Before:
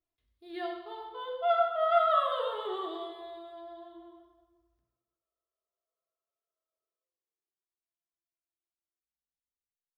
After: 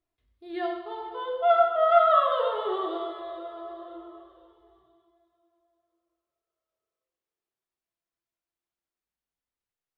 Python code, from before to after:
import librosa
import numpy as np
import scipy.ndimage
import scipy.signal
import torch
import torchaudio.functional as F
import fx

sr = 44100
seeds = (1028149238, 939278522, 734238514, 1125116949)

p1 = fx.high_shelf(x, sr, hz=3900.0, db=-11.5)
p2 = p1 + fx.echo_feedback(p1, sr, ms=494, feedback_pct=54, wet_db=-19.5, dry=0)
y = p2 * librosa.db_to_amplitude(6.5)